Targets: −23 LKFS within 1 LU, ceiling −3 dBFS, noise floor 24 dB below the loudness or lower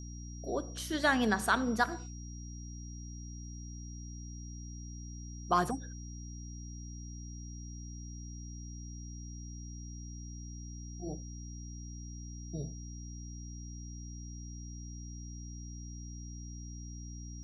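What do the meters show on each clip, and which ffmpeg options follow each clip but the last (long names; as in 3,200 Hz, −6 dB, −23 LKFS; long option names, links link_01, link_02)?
mains hum 60 Hz; hum harmonics up to 300 Hz; level of the hum −42 dBFS; interfering tone 5,700 Hz; level of the tone −52 dBFS; integrated loudness −39.5 LKFS; sample peak −14.0 dBFS; target loudness −23.0 LKFS
→ -af "bandreject=frequency=60:width_type=h:width=6,bandreject=frequency=120:width_type=h:width=6,bandreject=frequency=180:width_type=h:width=6,bandreject=frequency=240:width_type=h:width=6,bandreject=frequency=300:width_type=h:width=6"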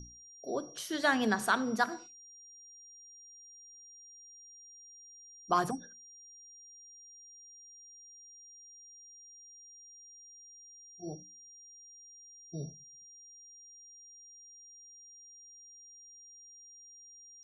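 mains hum none found; interfering tone 5,700 Hz; level of the tone −52 dBFS
→ -af "bandreject=frequency=5700:width=30"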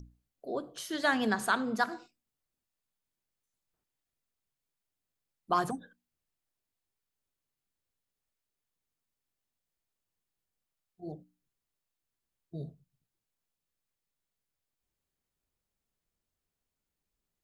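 interfering tone none found; integrated loudness −32.5 LKFS; sample peak −14.0 dBFS; target loudness −23.0 LKFS
→ -af "volume=9.5dB"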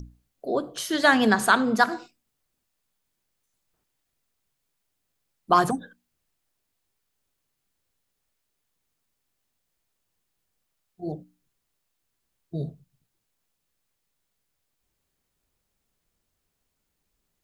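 integrated loudness −23.0 LKFS; sample peak −4.5 dBFS; background noise floor −79 dBFS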